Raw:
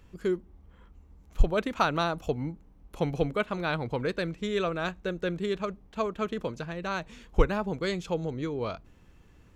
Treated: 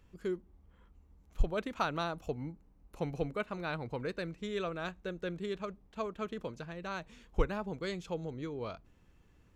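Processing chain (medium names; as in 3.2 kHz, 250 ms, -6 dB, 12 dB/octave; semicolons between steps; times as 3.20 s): 2.23–4.38 s: band-stop 3.3 kHz, Q 9.7; trim -7.5 dB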